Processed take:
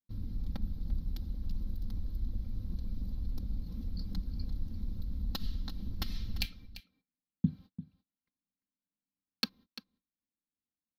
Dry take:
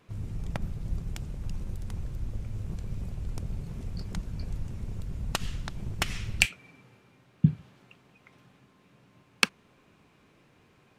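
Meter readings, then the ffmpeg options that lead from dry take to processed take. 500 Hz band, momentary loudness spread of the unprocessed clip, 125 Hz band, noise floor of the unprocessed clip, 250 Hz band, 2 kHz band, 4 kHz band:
−12.5 dB, 12 LU, −6.5 dB, −63 dBFS, −4.5 dB, −17.5 dB, −6.5 dB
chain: -filter_complex "[0:a]aecho=1:1:3.8:0.9,asplit=2[link_01][link_02];[link_02]acompressor=threshold=-36dB:ratio=6,volume=-2dB[link_03];[link_01][link_03]amix=inputs=2:normalize=0,agate=range=-38dB:threshold=-42dB:ratio=16:detection=peak,firequalizer=gain_entry='entry(220,0);entry(570,-12);entry(960,-11);entry(2600,-16);entry(4100,3);entry(7700,-24);entry(13000,2)':delay=0.05:min_phase=1,aecho=1:1:344:0.188,volume=-6.5dB"

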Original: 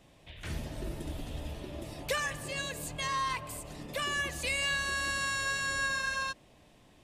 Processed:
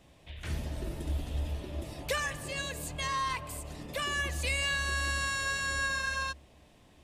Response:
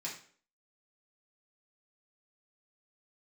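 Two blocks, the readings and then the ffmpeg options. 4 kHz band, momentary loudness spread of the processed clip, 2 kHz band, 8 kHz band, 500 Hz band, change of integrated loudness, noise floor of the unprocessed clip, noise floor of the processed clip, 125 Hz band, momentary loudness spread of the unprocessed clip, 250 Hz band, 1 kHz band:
0.0 dB, 10 LU, 0.0 dB, 0.0 dB, 0.0 dB, +0.5 dB, −60 dBFS, −60 dBFS, +5.0 dB, 12 LU, 0.0 dB, 0.0 dB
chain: -af "equalizer=frequency=70:width=7.4:gain=13"

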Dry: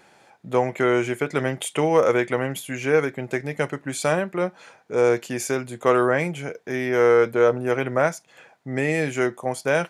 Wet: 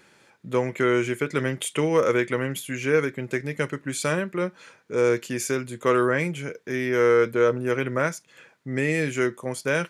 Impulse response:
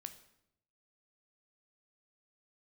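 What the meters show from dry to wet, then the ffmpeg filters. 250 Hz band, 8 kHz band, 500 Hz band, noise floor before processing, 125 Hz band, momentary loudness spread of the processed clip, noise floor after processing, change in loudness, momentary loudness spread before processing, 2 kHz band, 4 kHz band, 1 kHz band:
−0.5 dB, 0.0 dB, −2.5 dB, −56 dBFS, 0.0 dB, 9 LU, −58 dBFS, −2.0 dB, 10 LU, −0.5 dB, 0.0 dB, −4.0 dB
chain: -af "equalizer=frequency=740:width=2.8:gain=-14"

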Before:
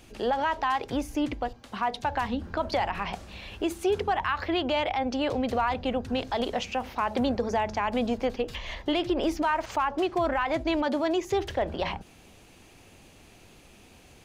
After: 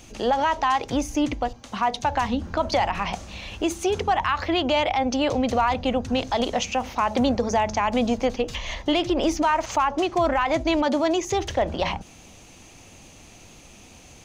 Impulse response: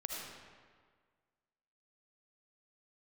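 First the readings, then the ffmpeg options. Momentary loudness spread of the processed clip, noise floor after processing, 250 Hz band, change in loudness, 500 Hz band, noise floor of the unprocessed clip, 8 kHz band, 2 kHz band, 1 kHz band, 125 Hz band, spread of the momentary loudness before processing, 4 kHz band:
6 LU, −48 dBFS, +4.5 dB, +4.5 dB, +4.0 dB, −54 dBFS, +11.5 dB, +3.5 dB, +5.0 dB, +5.5 dB, 6 LU, +5.5 dB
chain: -af "equalizer=frequency=400:width_type=o:width=0.33:gain=-5,equalizer=frequency=1600:width_type=o:width=0.33:gain=-4,equalizer=frequency=6300:width_type=o:width=0.33:gain=9,equalizer=frequency=12500:width_type=o:width=0.33:gain=-7,volume=5.5dB"

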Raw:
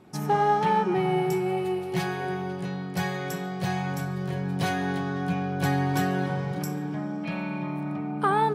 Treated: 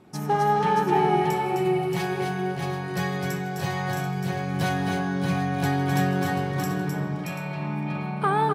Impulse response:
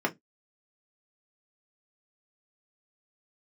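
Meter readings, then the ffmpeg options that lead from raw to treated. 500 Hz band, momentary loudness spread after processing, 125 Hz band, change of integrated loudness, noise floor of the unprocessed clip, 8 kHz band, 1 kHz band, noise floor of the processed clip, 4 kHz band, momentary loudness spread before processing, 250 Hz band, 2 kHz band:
+1.5 dB, 8 LU, +2.5 dB, +2.0 dB, −33 dBFS, +2.5 dB, +2.0 dB, −31 dBFS, +2.5 dB, 8 LU, +1.5 dB, +2.5 dB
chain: -filter_complex "[0:a]asplit=2[link_01][link_02];[link_02]aecho=0:1:157|257|266|627|736:0.126|0.473|0.376|0.562|0.266[link_03];[link_01][link_03]amix=inputs=2:normalize=0" -ar 48000 -c:a sbc -b:a 192k

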